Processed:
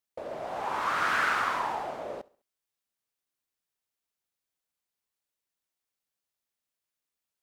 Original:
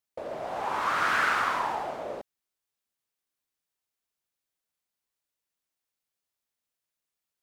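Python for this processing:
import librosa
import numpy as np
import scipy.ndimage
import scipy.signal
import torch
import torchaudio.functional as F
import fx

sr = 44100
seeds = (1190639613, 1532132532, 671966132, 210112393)

y = fx.echo_feedback(x, sr, ms=68, feedback_pct=40, wet_db=-22.5)
y = y * librosa.db_to_amplitude(-1.5)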